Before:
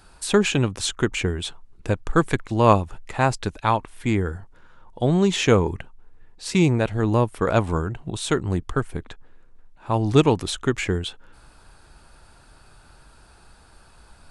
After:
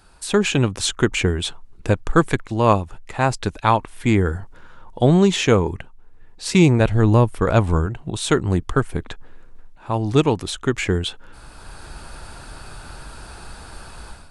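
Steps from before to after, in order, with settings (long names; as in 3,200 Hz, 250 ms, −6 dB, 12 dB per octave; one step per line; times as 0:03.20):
0:06.80–0:07.86: low-shelf EQ 95 Hz +10.5 dB
automatic gain control gain up to 14.5 dB
level −1 dB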